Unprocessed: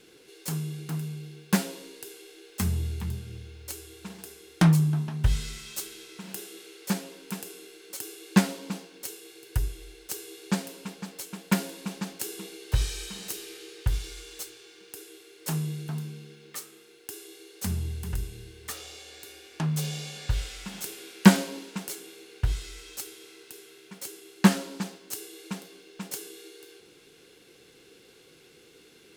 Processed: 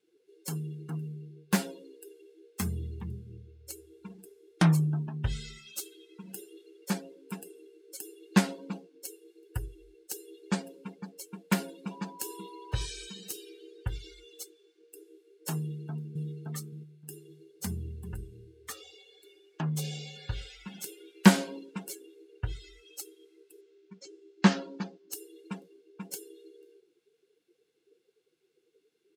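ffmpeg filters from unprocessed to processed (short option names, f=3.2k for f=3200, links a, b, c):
-filter_complex "[0:a]asettb=1/sr,asplit=3[a][b][c];[a]atrim=end=11.914[d];[b]atrim=start=11.91:end=12.86,asetpts=PTS-STARTPTS,afade=t=in:d=0.004:c=qsin,afade=t=out:st=0.946:d=0.004:c=qsin,aeval=exprs='val(0)+0.00562*sin(2*PI*980*n/s)':c=same[e];[c]atrim=start=12.856[f];[d][e]acrossfade=d=0.004:c1=hsin:c2=qsin[g];[g][f]acrossfade=d=0.004:c1=qsin:c2=hsin,asplit=2[h][i];[i]afade=t=in:st=15.58:d=0.01,afade=t=out:st=16.26:d=0.01,aecho=0:1:570|1140|1710|2280:0.841395|0.210349|0.0525872|0.0131468[j];[h][j]amix=inputs=2:normalize=0,asettb=1/sr,asplit=3[k][l][m];[k]atrim=end=23.614[n];[l]atrim=start=23.61:end=25.12,asetpts=PTS-STARTPTS,afade=t=in:d=0.004:c=qsin,afade=t=out:st=1.506:d=0.004:c=qsin,lowpass=f=6.9k:w=0.5412,lowpass=f=6.9k:w=1.3066[o];[m]atrim=start=25.116[p];[n][o]acrossfade=d=0.004:c1=hsin:c2=qsin[q];[q][p]acrossfade=d=0.004:c1=qsin:c2=hsin,highpass=f=130:p=1,afftdn=nr=23:nf=-41,volume=-1.5dB"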